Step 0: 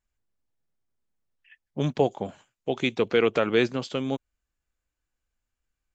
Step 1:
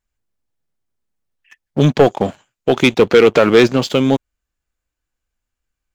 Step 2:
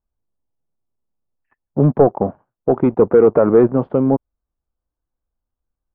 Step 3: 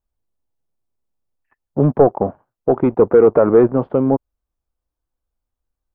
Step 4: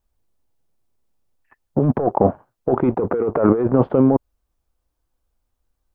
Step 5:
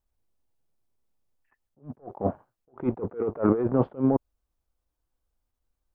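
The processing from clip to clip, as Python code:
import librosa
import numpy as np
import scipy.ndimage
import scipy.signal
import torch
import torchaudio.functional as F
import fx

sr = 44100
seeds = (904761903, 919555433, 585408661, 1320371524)

y1 = fx.leveller(x, sr, passes=2)
y1 = y1 * librosa.db_to_amplitude(7.5)
y2 = scipy.signal.sosfilt(scipy.signal.butter(4, 1100.0, 'lowpass', fs=sr, output='sos'), y1)
y2 = y2 * librosa.db_to_amplitude(-1.0)
y3 = fx.peak_eq(y2, sr, hz=180.0, db=-3.5, octaves=1.2)
y3 = y3 * librosa.db_to_amplitude(1.0)
y4 = fx.over_compress(y3, sr, threshold_db=-18.0, ratio=-1.0)
y4 = y4 * librosa.db_to_amplitude(2.0)
y5 = fx.attack_slew(y4, sr, db_per_s=250.0)
y5 = y5 * librosa.db_to_amplitude(-6.5)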